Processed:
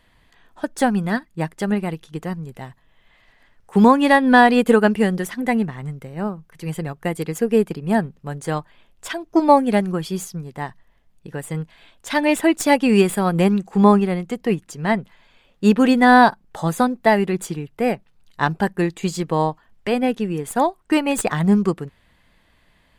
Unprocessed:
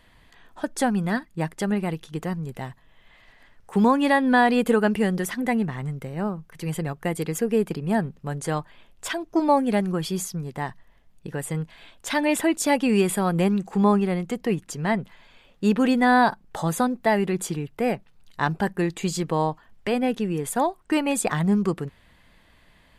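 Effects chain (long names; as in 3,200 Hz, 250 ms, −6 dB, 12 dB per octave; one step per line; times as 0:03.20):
stylus tracing distortion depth 0.021 ms
expander for the loud parts 1.5 to 1, over −33 dBFS
level +7 dB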